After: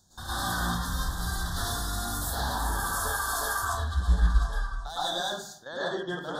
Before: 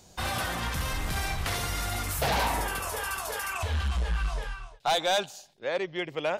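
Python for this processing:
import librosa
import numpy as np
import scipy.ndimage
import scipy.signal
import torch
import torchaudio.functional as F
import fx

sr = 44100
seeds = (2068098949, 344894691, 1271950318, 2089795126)

y = scipy.signal.sosfilt(scipy.signal.ellip(3, 1.0, 40, [1700.0, 3400.0], 'bandstop', fs=sr, output='sos'), x)
y = fx.peak_eq(y, sr, hz=480.0, db=-11.0, octaves=1.2)
y = fx.level_steps(y, sr, step_db=13)
y = 10.0 ** (-22.0 / 20.0) * np.tanh(y / 10.0 ** (-22.0 / 20.0))
y = fx.rev_plate(y, sr, seeds[0], rt60_s=0.51, hf_ratio=0.55, predelay_ms=95, drr_db=-9.5)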